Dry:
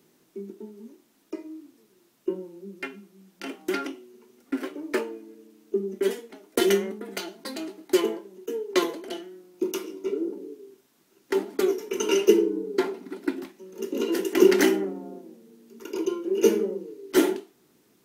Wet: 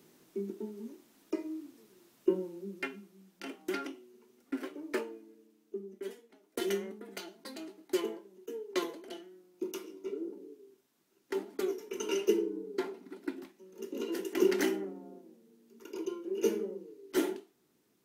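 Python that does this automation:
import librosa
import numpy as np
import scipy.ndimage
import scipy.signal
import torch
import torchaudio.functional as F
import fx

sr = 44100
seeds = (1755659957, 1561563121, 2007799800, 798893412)

y = fx.gain(x, sr, db=fx.line((2.41, 0.5), (3.52, -7.5), (5.0, -7.5), (6.19, -17.5), (6.84, -10.0)))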